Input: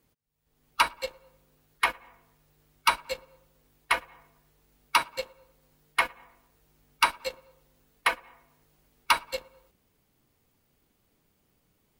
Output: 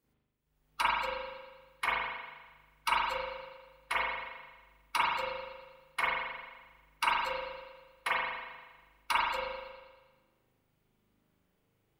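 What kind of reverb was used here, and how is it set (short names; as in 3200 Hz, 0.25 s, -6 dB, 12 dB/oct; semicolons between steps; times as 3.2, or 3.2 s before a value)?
spring tank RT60 1.3 s, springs 39 ms, chirp 70 ms, DRR -7 dB; gain -11 dB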